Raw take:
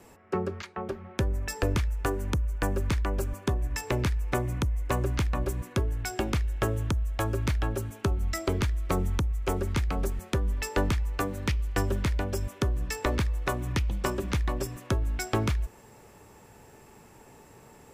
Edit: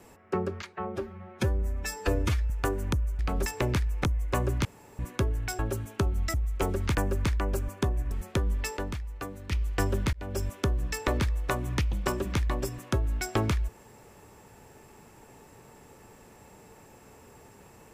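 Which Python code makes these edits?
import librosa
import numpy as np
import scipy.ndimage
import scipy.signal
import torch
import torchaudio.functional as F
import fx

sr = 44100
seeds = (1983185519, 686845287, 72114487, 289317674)

y = fx.edit(x, sr, fx.stretch_span(start_s=0.73, length_s=1.18, factor=1.5),
    fx.swap(start_s=2.6, length_s=1.16, other_s=9.82, other_length_s=0.27),
    fx.cut(start_s=4.34, length_s=0.27),
    fx.room_tone_fill(start_s=5.22, length_s=0.34),
    fx.cut(start_s=6.16, length_s=1.48),
    fx.cut(start_s=8.39, length_s=0.82),
    fx.clip_gain(start_s=10.75, length_s=0.75, db=-8.0),
    fx.fade_in_span(start_s=12.11, length_s=0.26), tone=tone)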